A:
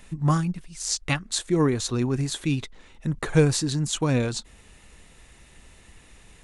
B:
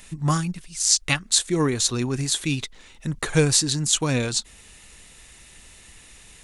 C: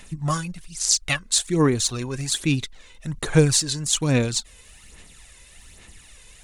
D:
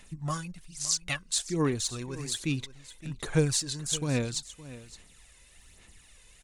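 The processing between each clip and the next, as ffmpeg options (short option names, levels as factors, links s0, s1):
-af "highshelf=f=2200:g=11,volume=0.891"
-af "aphaser=in_gain=1:out_gain=1:delay=2:decay=0.52:speed=1.2:type=sinusoidal,volume=0.75"
-af "aecho=1:1:566:0.15,volume=0.376"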